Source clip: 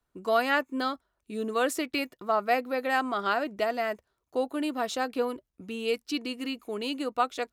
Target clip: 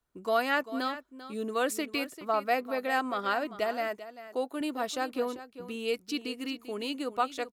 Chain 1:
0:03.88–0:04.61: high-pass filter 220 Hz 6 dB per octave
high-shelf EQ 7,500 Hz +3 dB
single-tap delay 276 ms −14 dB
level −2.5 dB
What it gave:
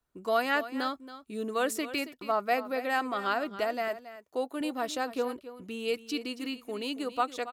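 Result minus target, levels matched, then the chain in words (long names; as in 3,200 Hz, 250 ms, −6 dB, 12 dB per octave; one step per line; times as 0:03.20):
echo 117 ms early
0:03.88–0:04.61: high-pass filter 220 Hz 6 dB per octave
high-shelf EQ 7,500 Hz +3 dB
single-tap delay 393 ms −14 dB
level −2.5 dB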